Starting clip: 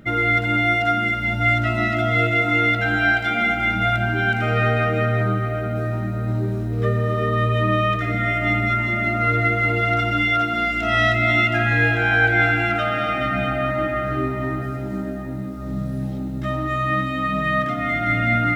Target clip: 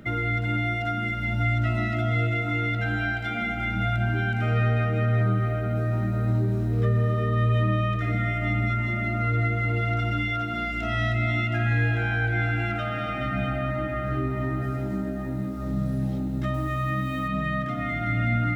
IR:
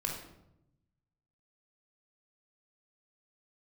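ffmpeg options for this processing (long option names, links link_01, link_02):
-filter_complex "[0:a]asettb=1/sr,asplit=3[link_01][link_02][link_03];[link_01]atrim=end=16.544[link_04];[link_02]atrim=start=16.54:end=17.28,asetpts=PTS-STARTPTS,afade=type=in:duration=0.004:curve=qsin,afade=type=out:start_time=0.736:duration=0.004:curve=qsin,acrusher=bits=6:mix=0:aa=0.5[link_05];[link_03]atrim=start=17.276[link_06];[link_04][link_05]acrossfade=duration=0.004:curve1=hsin:curve2=qsin[link_07];[link_07][link_06]acrossfade=duration=0.004:curve1=qsin:curve2=hsin,acrossover=split=210[link_08][link_09];[link_09]acompressor=threshold=-32dB:ratio=2.5[link_10];[link_08][link_10]amix=inputs=2:normalize=0"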